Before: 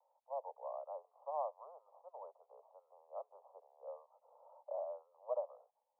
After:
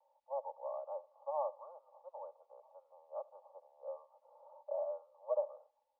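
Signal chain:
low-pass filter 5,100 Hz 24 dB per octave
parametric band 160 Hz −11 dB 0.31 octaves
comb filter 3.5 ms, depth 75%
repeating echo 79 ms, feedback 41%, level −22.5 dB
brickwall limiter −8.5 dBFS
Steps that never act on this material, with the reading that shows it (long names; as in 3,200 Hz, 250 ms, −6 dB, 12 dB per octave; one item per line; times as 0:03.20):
low-pass filter 5,100 Hz: nothing at its input above 1,300 Hz
parametric band 160 Hz: nothing at its input below 380 Hz
brickwall limiter −8.5 dBFS: peak of its input −24.5 dBFS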